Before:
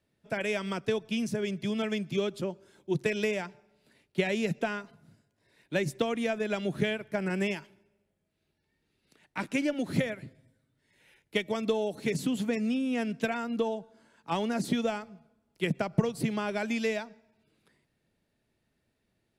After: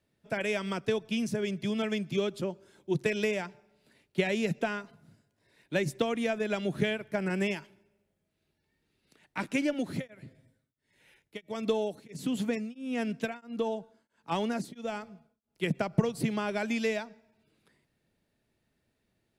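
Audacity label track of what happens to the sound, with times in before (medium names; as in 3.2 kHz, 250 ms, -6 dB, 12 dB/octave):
9.750000	15.720000	tremolo of two beating tones nulls at 1.5 Hz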